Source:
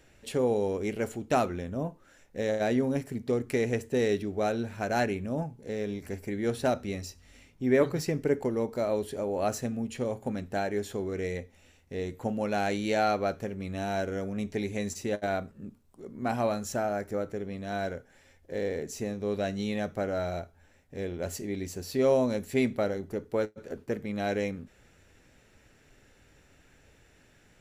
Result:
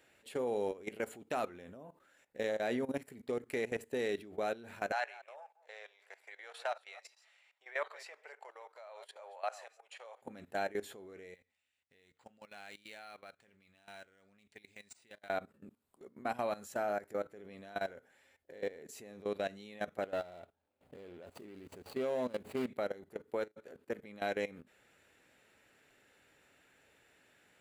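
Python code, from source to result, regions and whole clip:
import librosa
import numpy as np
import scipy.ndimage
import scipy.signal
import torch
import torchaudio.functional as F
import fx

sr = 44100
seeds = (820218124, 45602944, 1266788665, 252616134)

y = fx.chain(x, sr, fx.reverse_delay(ms=148, wet_db=-13.0),
    fx.cheby2_highpass(hz=260.0, order=4, stop_db=50),
    fx.air_absorb(metres=75.0), at=(4.92, 10.22))
y = fx.chain(y, sr, fx.tone_stack(knobs='5-5-5'),
    fx.resample_linear(factor=3), at=(11.34, 15.3))
y = fx.chain(y, sr, fx.median_filter(points=25),
    fx.pre_swell(db_per_s=140.0), at=(20.02, 22.69))
y = fx.highpass(y, sr, hz=540.0, slope=6)
y = fx.peak_eq(y, sr, hz=5800.0, db=-9.0, octaves=0.47)
y = fx.level_steps(y, sr, step_db=17)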